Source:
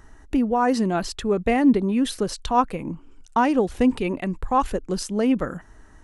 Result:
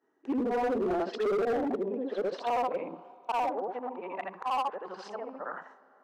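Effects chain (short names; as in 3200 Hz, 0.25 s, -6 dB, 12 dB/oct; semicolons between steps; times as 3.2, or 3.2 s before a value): short-time reversal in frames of 0.167 s; in parallel at -6.5 dB: wrapped overs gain 15 dB; on the sum: treble ducked by the level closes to 790 Hz, closed at -17.5 dBFS; limiter -23.5 dBFS, peak gain reduction 11 dB; Bessel low-pass 4200 Hz, order 2; gate with hold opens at -33 dBFS; HPF 150 Hz 12 dB/oct; tilt -1.5 dB/oct; on a send at -19.5 dB: reverb RT60 3.8 s, pre-delay 20 ms; on the sum: high-pass sweep 380 Hz -> 890 Hz, 0.7–4.45; overloaded stage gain 25.5 dB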